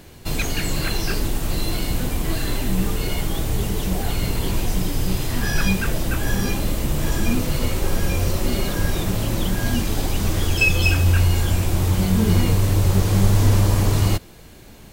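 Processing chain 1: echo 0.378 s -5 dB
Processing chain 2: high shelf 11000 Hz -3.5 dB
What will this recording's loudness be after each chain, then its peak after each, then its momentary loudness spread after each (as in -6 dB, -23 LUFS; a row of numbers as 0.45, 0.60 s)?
-21.0, -22.0 LUFS; -2.5, -3.5 dBFS; 7, 8 LU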